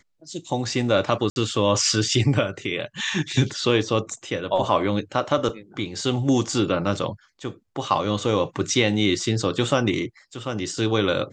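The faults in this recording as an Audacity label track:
1.300000	1.360000	dropout 61 ms
5.490000	5.490000	dropout 2.5 ms

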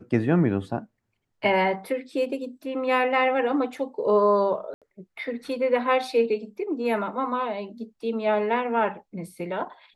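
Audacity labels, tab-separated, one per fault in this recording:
4.740000	4.820000	dropout 77 ms

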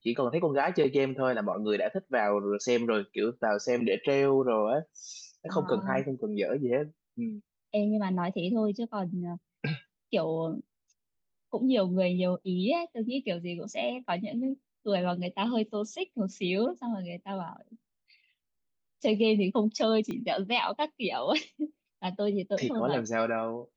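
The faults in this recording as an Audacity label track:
20.110000	20.110000	pop -24 dBFS

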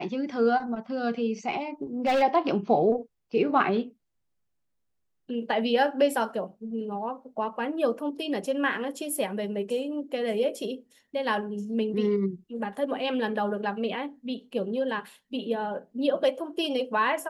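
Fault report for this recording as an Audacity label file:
2.060000	2.230000	clipped -20 dBFS

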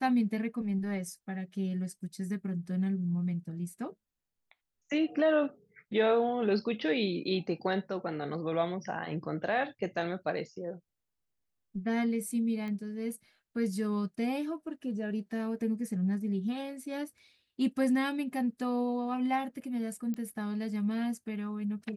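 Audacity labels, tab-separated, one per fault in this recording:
12.680000	12.680000	pop -28 dBFS
20.140000	20.140000	pop -26 dBFS

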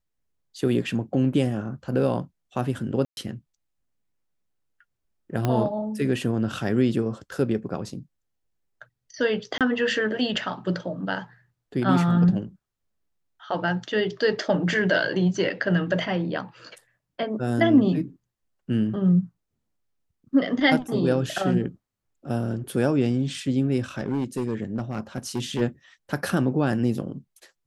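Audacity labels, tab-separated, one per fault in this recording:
3.050000	3.170000	dropout 121 ms
5.450000	5.450000	pop -11 dBFS
9.580000	9.610000	dropout 27 ms
23.980000	25.620000	clipped -21 dBFS

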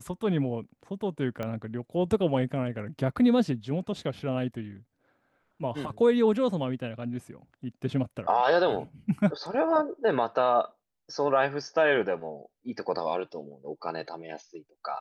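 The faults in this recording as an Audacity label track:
1.430000	1.430000	pop -20 dBFS

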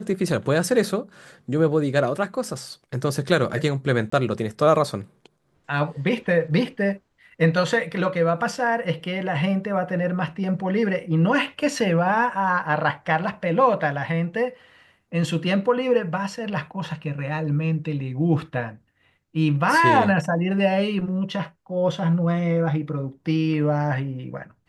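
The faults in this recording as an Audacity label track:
4.100000	4.120000	dropout 24 ms

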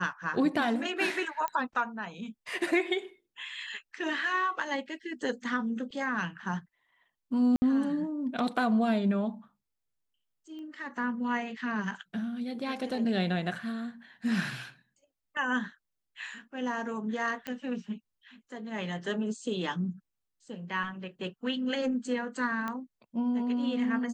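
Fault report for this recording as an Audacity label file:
1.480000	1.480000	pop -18 dBFS
7.560000	7.620000	dropout 60 ms
10.590000	10.590000	pop -36 dBFS
17.470000	17.470000	pop -21 dBFS
22.680000	22.680000	pop -21 dBFS

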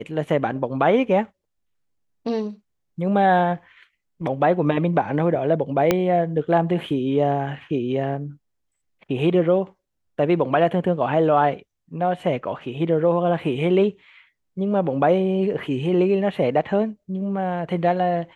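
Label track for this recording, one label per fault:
5.910000	5.910000	pop -4 dBFS

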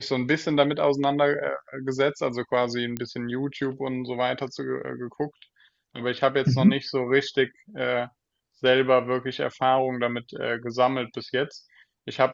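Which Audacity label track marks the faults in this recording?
2.970000	2.970000	pop -15 dBFS

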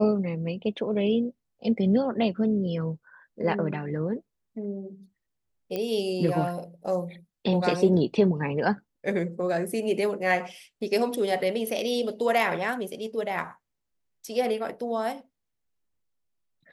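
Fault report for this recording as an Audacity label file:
5.760000	5.760000	pop -17 dBFS

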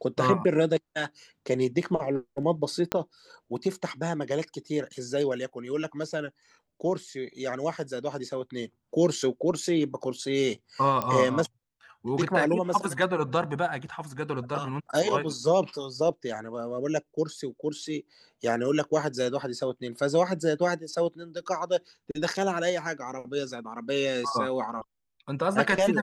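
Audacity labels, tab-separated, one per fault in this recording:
2.920000	2.920000	pop -10 dBFS
11.020000	11.020000	pop -14 dBFS

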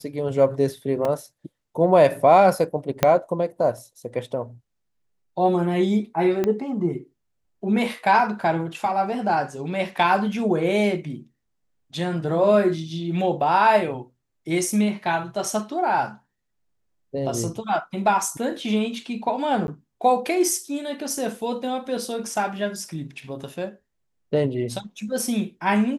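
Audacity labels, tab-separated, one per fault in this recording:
1.050000	1.050000	dropout 2.3 ms
3.030000	3.030000	pop -3 dBFS
6.440000	6.440000	pop -11 dBFS
19.670000	19.680000	dropout 11 ms

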